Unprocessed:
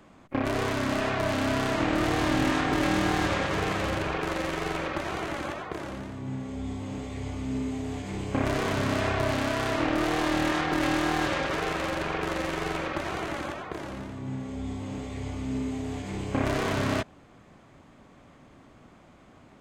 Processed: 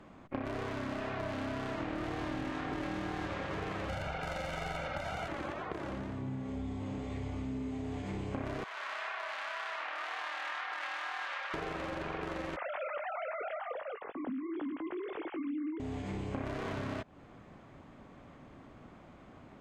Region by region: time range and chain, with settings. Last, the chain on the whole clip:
3.89–5.28 s: treble shelf 4.6 kHz +7.5 dB + comb 1.4 ms, depth 87%
8.64–11.54 s: Bessel high-pass 1.3 kHz, order 4 + treble shelf 4.7 kHz -11.5 dB
12.56–15.80 s: formants replaced by sine waves + doubling 19 ms -13 dB
whole clip: low-pass 2.8 kHz 6 dB/octave; compression 6:1, threshold -35 dBFS

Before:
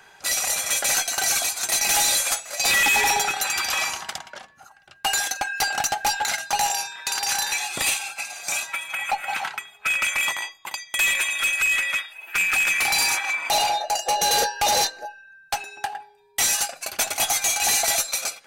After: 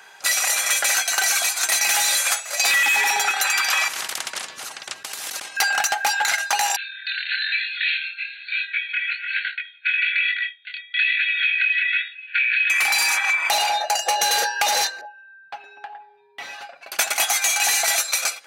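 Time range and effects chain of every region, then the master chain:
3.88–5.57 s: low-pass 8.7 kHz + compressor with a negative ratio -36 dBFS + spectrum-flattening compressor 4:1
6.76–12.70 s: chorus 1.1 Hz, delay 19.5 ms, depth 7.5 ms + brick-wall FIR band-pass 1.4–4.5 kHz
15.01–16.92 s: distance through air 370 m + comb 7.1 ms, depth 42% + compression 1.5:1, threshold -52 dBFS
whole clip: high-pass 650 Hz 6 dB/octave; dynamic bell 1.7 kHz, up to +6 dB, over -38 dBFS, Q 0.96; compression, threshold -22 dBFS; trim +5 dB

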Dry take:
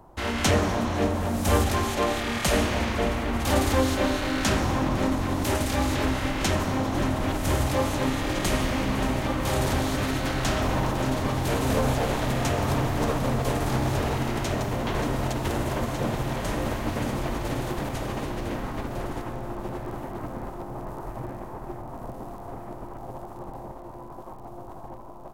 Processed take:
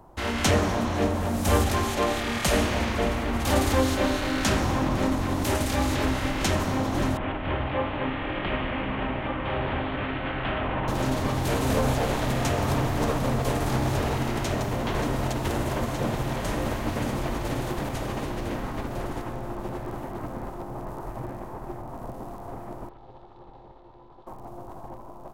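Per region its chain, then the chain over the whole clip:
7.17–10.88 s: steep low-pass 3.2 kHz 48 dB/octave + bass shelf 440 Hz -5.5 dB
22.89–24.27 s: four-pole ladder low-pass 4.2 kHz, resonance 60% + comb 2.3 ms, depth 30%
whole clip: none

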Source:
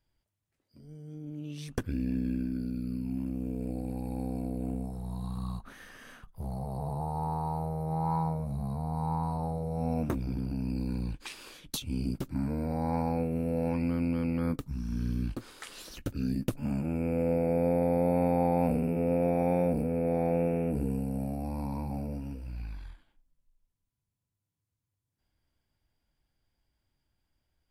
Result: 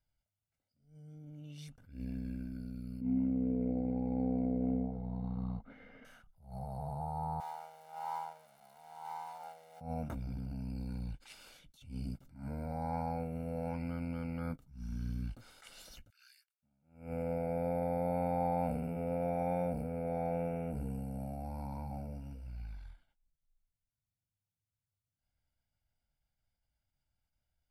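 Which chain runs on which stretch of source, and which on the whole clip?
3.01–6.05 s: distance through air 370 m + small resonant body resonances 260/450/2100 Hz, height 15 dB, ringing for 35 ms
7.40–9.81 s: jump at every zero crossing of -39.5 dBFS + high-pass 800 Hz + upward expansion, over -44 dBFS
16.10–16.63 s: elliptic high-pass 1.5 kHz, stop band 80 dB + inverted gate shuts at -34 dBFS, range -34 dB + loudspeaker Doppler distortion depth 0.25 ms
whole clip: comb 1.4 ms, depth 60%; dynamic bell 1.1 kHz, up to +4 dB, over -44 dBFS, Q 1.1; attacks held to a fixed rise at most 130 dB/s; trim -9 dB

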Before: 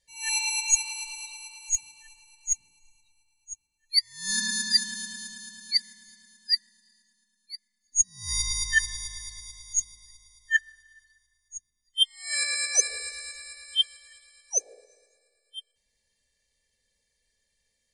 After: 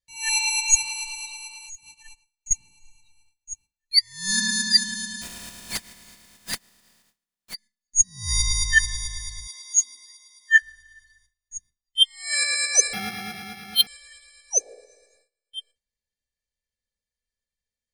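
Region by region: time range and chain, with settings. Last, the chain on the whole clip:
1.66–2.51 s: gate -53 dBFS, range -15 dB + compression 4:1, threshold -45 dBFS
5.21–7.53 s: spectral contrast reduction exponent 0.19 + compression 2:1, threshold -36 dBFS
9.47–10.62 s: steep high-pass 230 Hz 72 dB/octave + doubling 14 ms -5.5 dB
12.93–13.87 s: high-pass 650 Hz 24 dB/octave + careless resampling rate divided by 6×, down none, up hold
whole clip: tone controls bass +5 dB, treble 0 dB; gate with hold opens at -56 dBFS; treble shelf 9.4 kHz -3.5 dB; trim +5 dB

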